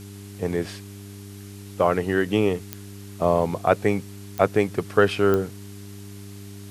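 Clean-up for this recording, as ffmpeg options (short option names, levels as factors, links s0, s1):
-af "adeclick=t=4,bandreject=f=100.1:t=h:w=4,bandreject=f=200.2:t=h:w=4,bandreject=f=300.3:t=h:w=4,bandreject=f=400.4:t=h:w=4,afftdn=nr=28:nf=-40"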